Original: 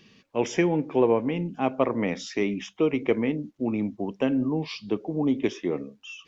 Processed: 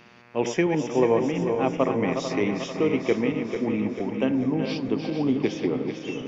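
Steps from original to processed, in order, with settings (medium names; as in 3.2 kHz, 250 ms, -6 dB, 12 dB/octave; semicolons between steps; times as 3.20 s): backward echo that repeats 222 ms, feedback 74%, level -7 dB; echo that smears into a reverb 481 ms, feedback 45%, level -15 dB; mains buzz 120 Hz, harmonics 22, -54 dBFS -1 dB/octave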